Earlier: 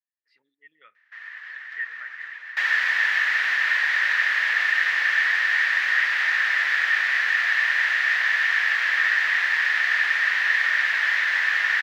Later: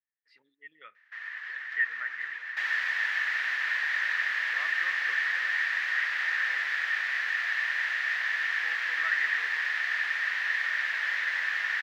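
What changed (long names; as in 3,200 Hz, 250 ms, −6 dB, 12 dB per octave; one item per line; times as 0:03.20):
speech +3.5 dB
second sound −8.0 dB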